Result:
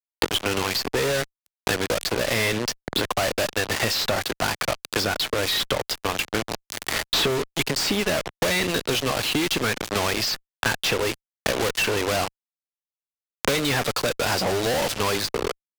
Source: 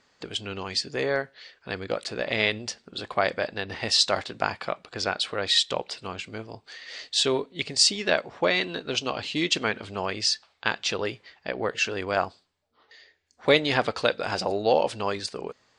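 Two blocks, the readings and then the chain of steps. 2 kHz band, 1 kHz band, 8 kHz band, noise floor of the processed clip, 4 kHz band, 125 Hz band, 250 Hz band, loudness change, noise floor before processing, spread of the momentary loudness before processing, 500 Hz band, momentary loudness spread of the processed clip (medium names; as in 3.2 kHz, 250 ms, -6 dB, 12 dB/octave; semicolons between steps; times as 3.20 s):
+3.5 dB, +2.5 dB, +4.0 dB, under -85 dBFS, +1.5 dB, +7.5 dB, +4.5 dB, +2.5 dB, -68 dBFS, 14 LU, +2.0 dB, 5 LU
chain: fuzz box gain 45 dB, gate -35 dBFS; three bands compressed up and down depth 100%; trim -7 dB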